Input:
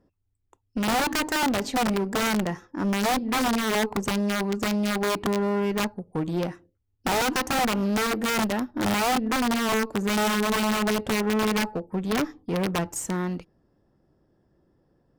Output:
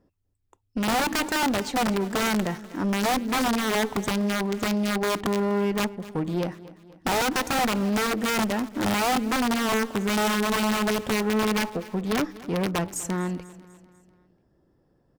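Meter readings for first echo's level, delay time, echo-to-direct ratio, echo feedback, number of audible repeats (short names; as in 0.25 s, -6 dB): -18.5 dB, 0.247 s, -17.0 dB, 52%, 3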